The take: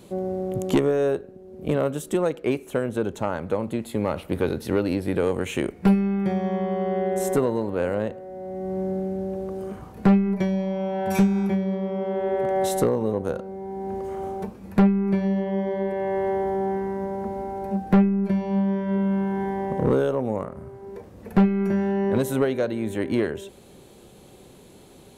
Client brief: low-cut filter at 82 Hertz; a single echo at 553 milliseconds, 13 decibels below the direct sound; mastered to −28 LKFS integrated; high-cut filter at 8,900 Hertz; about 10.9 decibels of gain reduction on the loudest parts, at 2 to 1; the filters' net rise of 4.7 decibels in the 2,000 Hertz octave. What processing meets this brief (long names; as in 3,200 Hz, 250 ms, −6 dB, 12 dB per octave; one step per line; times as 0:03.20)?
high-pass filter 82 Hz
low-pass filter 8,900 Hz
parametric band 2,000 Hz +6 dB
downward compressor 2 to 1, threshold −33 dBFS
single-tap delay 553 ms −13 dB
level +4 dB